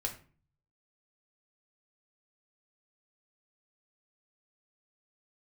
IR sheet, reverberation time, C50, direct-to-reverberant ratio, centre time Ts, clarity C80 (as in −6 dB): 0.40 s, 11.0 dB, 1.0 dB, 16 ms, 16.0 dB